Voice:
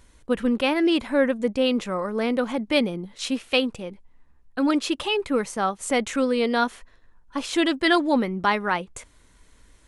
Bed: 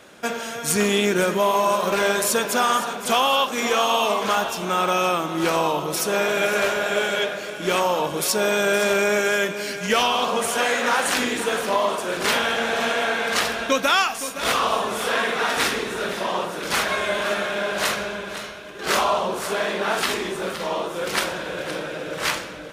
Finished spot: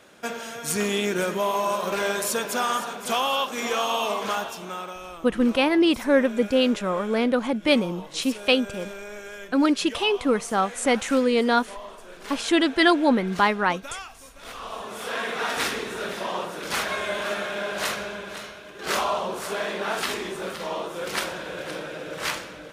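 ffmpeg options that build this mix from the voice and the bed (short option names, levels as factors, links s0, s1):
-filter_complex "[0:a]adelay=4950,volume=1.19[s0];[1:a]volume=2.82,afade=t=out:st=4.26:d=0.72:silence=0.211349,afade=t=in:st=14.54:d=0.92:silence=0.199526[s1];[s0][s1]amix=inputs=2:normalize=0"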